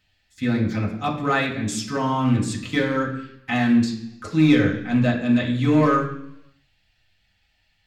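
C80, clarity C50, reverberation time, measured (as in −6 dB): 10.5 dB, 7.5 dB, 0.70 s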